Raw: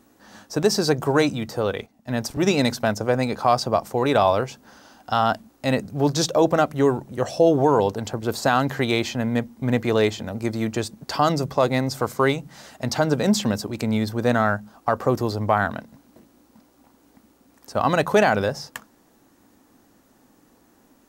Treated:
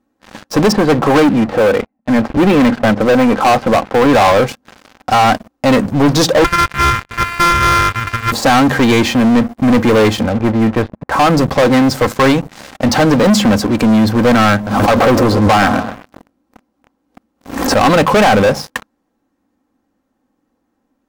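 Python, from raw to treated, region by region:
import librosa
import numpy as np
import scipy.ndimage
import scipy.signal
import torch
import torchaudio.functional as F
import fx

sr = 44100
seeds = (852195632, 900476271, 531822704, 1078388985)

y = fx.chain(x, sr, fx.lowpass(hz=2400.0, slope=24),
    fx.peak_eq(hz=89.0, db=-7.0, octaves=0.75), at=(0.72, 4.13))
y = fx.chain(y, sr, fx.sample_sort(block=128),
    fx.curve_eq(hz=(100.0, 310.0, 680.0, 1300.0, 2700.0, 4100.0), db=(0, -25, -22, 4, 0, -11)), at=(6.44, 8.32))
y = fx.chain(y, sr, fx.lowpass(hz=2000.0, slope=24),
    fx.peak_eq(hz=280.0, db=-5.0, octaves=1.4), at=(10.26, 11.37))
y = fx.chain(y, sr, fx.echo_wet_lowpass(ms=128, feedback_pct=36, hz=1200.0, wet_db=-12),
    fx.pre_swell(db_per_s=91.0), at=(14.54, 17.89))
y = fx.high_shelf(y, sr, hz=3900.0, db=-12.0)
y = y + 0.39 * np.pad(y, (int(3.8 * sr / 1000.0), 0))[:len(y)]
y = fx.leveller(y, sr, passes=5)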